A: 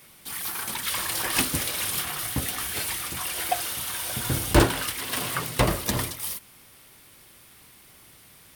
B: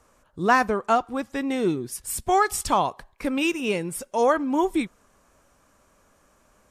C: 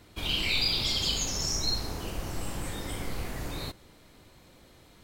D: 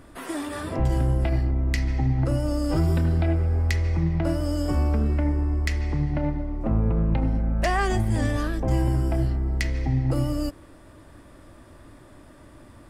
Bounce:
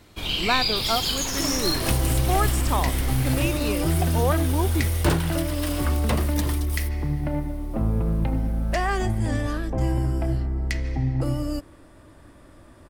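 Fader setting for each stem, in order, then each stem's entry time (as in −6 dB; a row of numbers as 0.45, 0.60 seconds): −5.0, −5.0, +3.0, −1.0 decibels; 0.50, 0.00, 0.00, 1.10 seconds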